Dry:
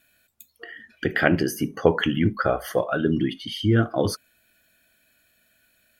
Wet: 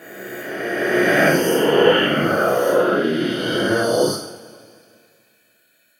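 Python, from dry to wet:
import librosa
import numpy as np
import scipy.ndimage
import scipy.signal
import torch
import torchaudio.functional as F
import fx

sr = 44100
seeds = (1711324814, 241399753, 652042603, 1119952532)

y = fx.spec_swells(x, sr, rise_s=2.65)
y = scipy.signal.sosfilt(scipy.signal.butter(2, 200.0, 'highpass', fs=sr, output='sos'), y)
y = fx.rev_double_slope(y, sr, seeds[0], early_s=0.54, late_s=2.3, knee_db=-18, drr_db=-8.5)
y = F.gain(torch.from_numpy(y), -8.5).numpy()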